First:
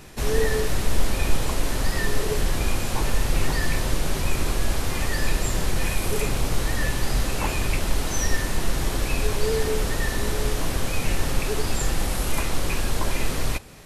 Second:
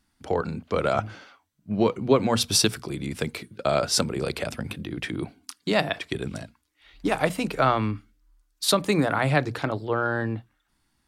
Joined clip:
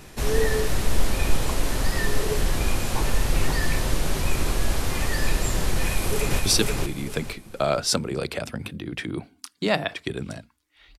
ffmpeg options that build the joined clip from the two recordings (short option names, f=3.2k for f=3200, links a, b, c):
-filter_complex "[0:a]apad=whole_dur=10.98,atrim=end=10.98,atrim=end=6.392[a];[1:a]atrim=start=2.438:end=7.03[b];[a][b]acrossfade=d=0.004:c1=hsin:c2=hsin,asplit=2[c][d];[d]afade=t=in:st=5.83:d=0.01,afade=t=out:st=6.39:d=0.01,aecho=0:1:470|940|1410|1880:0.794328|0.238298|0.0714895|0.0214469[e];[c][e]amix=inputs=2:normalize=0"